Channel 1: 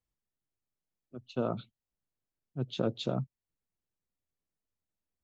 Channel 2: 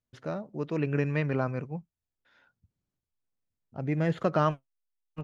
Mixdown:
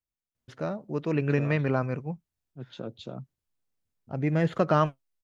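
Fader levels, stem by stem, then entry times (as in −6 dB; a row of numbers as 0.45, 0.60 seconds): −7.0, +2.5 decibels; 0.00, 0.35 seconds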